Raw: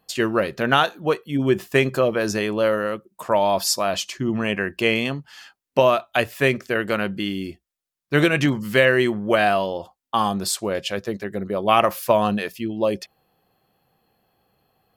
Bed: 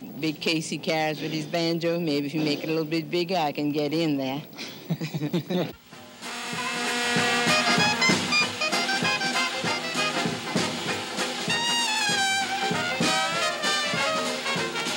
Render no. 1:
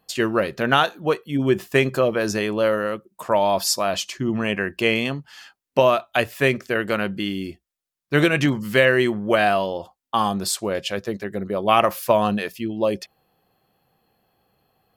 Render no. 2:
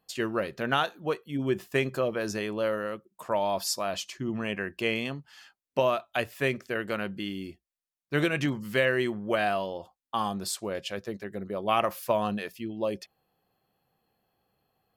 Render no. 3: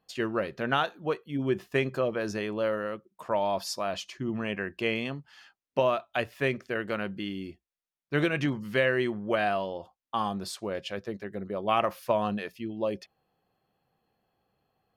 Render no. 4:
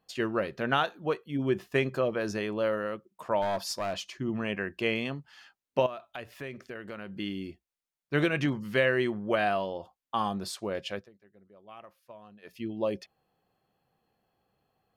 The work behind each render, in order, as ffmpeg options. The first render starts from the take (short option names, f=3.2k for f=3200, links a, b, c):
-af anull
-af "volume=-8.5dB"
-af "highshelf=f=6.9k:g=-11.5,bandreject=f=7.6k:w=13"
-filter_complex "[0:a]asplit=3[a][b][c];[a]afade=t=out:st=3.41:d=0.02[d];[b]aeval=exprs='clip(val(0),-1,0.0398)':c=same,afade=t=in:st=3.41:d=0.02,afade=t=out:st=4.04:d=0.02[e];[c]afade=t=in:st=4.04:d=0.02[f];[d][e][f]amix=inputs=3:normalize=0,asettb=1/sr,asplit=3[g][h][i];[g]atrim=end=5.864[j];[h]atrim=start=5.86:end=7.19,asetpts=PTS-STARTPTS,afade=t=in:d=0.004:c=qsin,afade=t=out:st=1.326:d=0.004:c=qsin,acompressor=threshold=-39dB:ratio=3:attack=3.2:release=140:knee=1:detection=peak[k];[i]atrim=start=7.186[l];[j][k]acrossfade=d=0.004:c1=hsin:c2=qsin[m];[m][l]acrossfade=d=0.004:c1=qsin:c2=hsin,asplit=3[n][o][p];[n]atrim=end=11.09,asetpts=PTS-STARTPTS,afade=t=out:st=10.94:d=0.15:silence=0.0707946[q];[o]atrim=start=11.09:end=12.42,asetpts=PTS-STARTPTS,volume=-23dB[r];[p]atrim=start=12.42,asetpts=PTS-STARTPTS,afade=t=in:d=0.15:silence=0.0707946[s];[q][r][s]concat=n=3:v=0:a=1"